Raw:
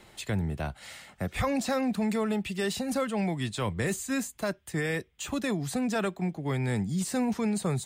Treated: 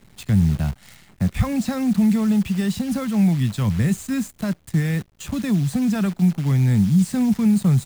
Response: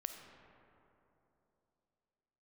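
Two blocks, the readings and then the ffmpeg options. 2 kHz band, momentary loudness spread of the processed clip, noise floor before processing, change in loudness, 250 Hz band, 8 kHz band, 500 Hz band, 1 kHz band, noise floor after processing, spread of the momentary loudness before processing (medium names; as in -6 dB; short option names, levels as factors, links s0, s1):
0.0 dB, 9 LU, -58 dBFS, +9.5 dB, +11.5 dB, +1.5 dB, -2.0 dB, -0.5 dB, -54 dBFS, 6 LU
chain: -af "lowshelf=f=280:t=q:w=1.5:g=11.5,acrusher=bits=7:dc=4:mix=0:aa=0.000001"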